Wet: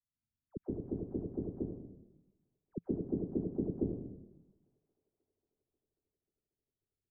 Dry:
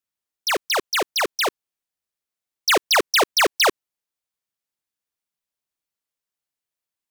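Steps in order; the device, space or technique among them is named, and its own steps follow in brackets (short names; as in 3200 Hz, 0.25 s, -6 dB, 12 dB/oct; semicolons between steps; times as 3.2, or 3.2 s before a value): 2.73–3.64 EQ curve 110 Hz 0 dB, 170 Hz +6 dB, 1800 Hz 0 dB, 9500 Hz +9 dB; thin delay 0.539 s, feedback 62%, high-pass 1400 Hz, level -23.5 dB; club heard from the street (limiter -13 dBFS, peak gain reduction 7.5 dB; LPF 200 Hz 24 dB/oct; reverb RT60 0.95 s, pre-delay 0.118 s, DRR -6.5 dB); gain +3.5 dB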